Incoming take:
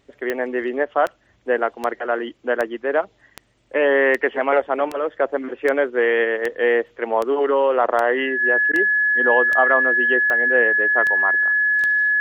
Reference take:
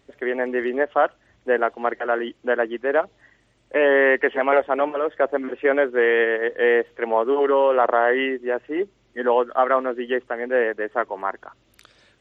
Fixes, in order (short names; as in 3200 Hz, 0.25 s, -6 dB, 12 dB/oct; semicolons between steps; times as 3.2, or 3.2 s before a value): de-click; notch 1700 Hz, Q 30; interpolate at 8.72, 12 ms